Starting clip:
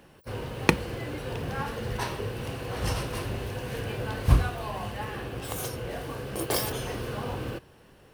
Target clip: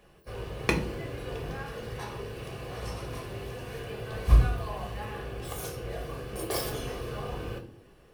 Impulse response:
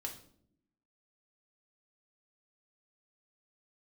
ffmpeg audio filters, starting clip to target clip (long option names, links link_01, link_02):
-filter_complex "[0:a]asettb=1/sr,asplit=3[link_01][link_02][link_03];[link_01]atrim=end=1.494[link_04];[link_02]atrim=start=1.49:end=4.12,asetpts=PTS-STARTPTS,afade=type=in:duration=0.004:curve=qsin,afade=type=out:start_time=2.626:duration=0.004:curve=qsin,acrossover=split=81|1700[link_05][link_06][link_07];[link_05]acompressor=threshold=-49dB:ratio=4[link_08];[link_06]acompressor=threshold=-32dB:ratio=4[link_09];[link_07]acompressor=threshold=-42dB:ratio=4[link_10];[link_08][link_09][link_10]amix=inputs=3:normalize=0[link_11];[link_03]atrim=start=4.116[link_12];[link_04][link_11]acrossfade=duration=0.004:curve1=hsin:curve2=qsin[link_13];[link_13][link_12]acrossfade=duration=0.004:curve1=qsin:curve2=hsin[link_14];[1:a]atrim=start_sample=2205,asetrate=57330,aresample=44100[link_15];[link_14][link_15]afir=irnorm=-1:irlink=0"